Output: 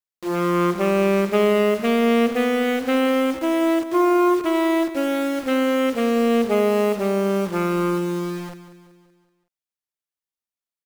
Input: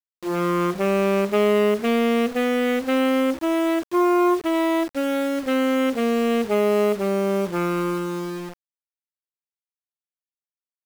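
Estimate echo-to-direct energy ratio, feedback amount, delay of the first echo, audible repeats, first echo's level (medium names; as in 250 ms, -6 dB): -12.5 dB, 50%, 189 ms, 4, -13.5 dB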